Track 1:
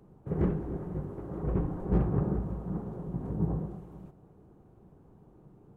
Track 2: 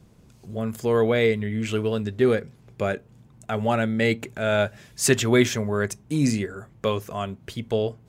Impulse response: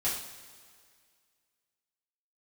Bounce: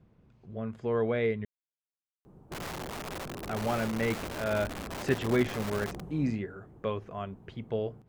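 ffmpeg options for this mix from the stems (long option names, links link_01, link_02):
-filter_complex "[0:a]acompressor=threshold=-32dB:ratio=12,aeval=exprs='(mod(56.2*val(0)+1,2)-1)/56.2':channel_layout=same,adelay=2250,volume=1.5dB[link_01];[1:a]lowpass=2400,volume=-8dB,asplit=3[link_02][link_03][link_04];[link_02]atrim=end=1.45,asetpts=PTS-STARTPTS,afade=type=out:start_time=1.446:duration=0.004:curve=hsin[link_05];[link_03]atrim=start=1.45:end=3.45,asetpts=PTS-STARTPTS,volume=0[link_06];[link_04]atrim=start=3.45,asetpts=PTS-STARTPTS,afade=type=in:duration=0.004:curve=hsin[link_07];[link_05][link_06][link_07]concat=n=3:v=0:a=1[link_08];[link_01][link_08]amix=inputs=2:normalize=0"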